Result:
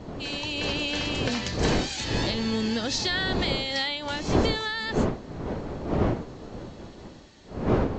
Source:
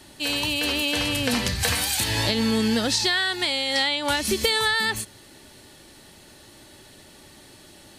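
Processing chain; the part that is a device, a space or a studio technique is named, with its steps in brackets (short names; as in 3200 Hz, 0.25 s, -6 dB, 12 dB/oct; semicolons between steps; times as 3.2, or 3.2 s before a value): smartphone video outdoors (wind noise 420 Hz -23 dBFS; AGC gain up to 3.5 dB; gain -8 dB; AAC 48 kbps 16000 Hz)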